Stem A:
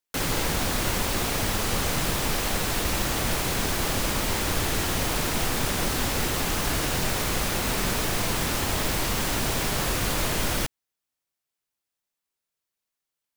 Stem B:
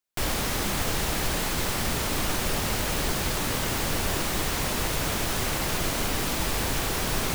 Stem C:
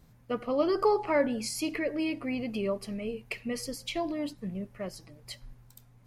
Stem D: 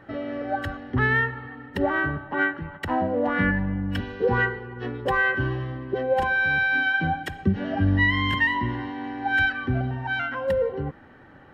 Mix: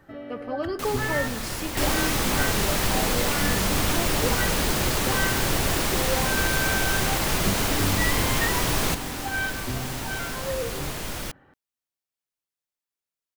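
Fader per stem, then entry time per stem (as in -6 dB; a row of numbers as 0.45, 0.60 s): -6.5, +2.5, -3.0, -7.0 dB; 0.65, 1.60, 0.00, 0.00 s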